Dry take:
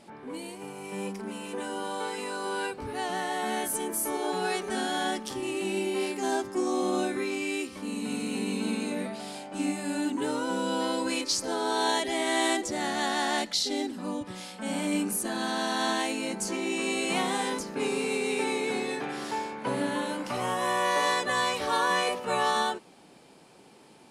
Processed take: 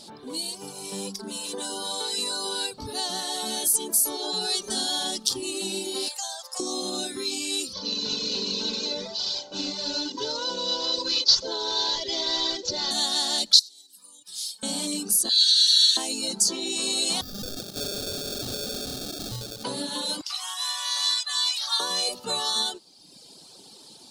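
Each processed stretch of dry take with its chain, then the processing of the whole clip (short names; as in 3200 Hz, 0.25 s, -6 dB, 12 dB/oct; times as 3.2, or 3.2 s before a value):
6.08–6.6 steep high-pass 480 Hz 96 dB/oct + compressor 16:1, threshold -35 dBFS
7.73–12.91 CVSD 32 kbps + comb 2 ms, depth 57%
13.59–14.63 notch comb 680 Hz + compressor 10:1, threshold -36 dBFS + pre-emphasis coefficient 0.97
15.29–15.97 steep high-pass 1800 Hz + bell 4200 Hz +6 dB 0.97 oct
17.21–19.64 sample-rate reducer 1000 Hz + hard clip -33.5 dBFS
20.21–21.8 Bessel high-pass 1500 Hz, order 8 + high shelf 6100 Hz -8.5 dB
whole clip: reverb removal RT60 1 s; compressor 3:1, threshold -33 dBFS; resonant high shelf 3000 Hz +11 dB, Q 3; gain +2.5 dB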